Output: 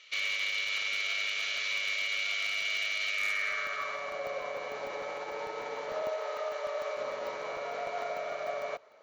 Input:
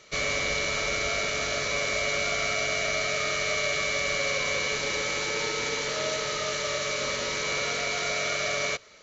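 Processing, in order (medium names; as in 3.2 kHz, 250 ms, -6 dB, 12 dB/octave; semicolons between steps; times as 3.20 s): 6.02–6.98 s: high-pass 390 Hz 24 dB/octave; peak limiter -21.5 dBFS, peak gain reduction 6 dB; band-pass sweep 2.9 kHz -> 750 Hz, 3.07–4.20 s; wavefolder -28.5 dBFS; crackling interface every 0.15 s, samples 64, zero, from 0.52 s; trim +4.5 dB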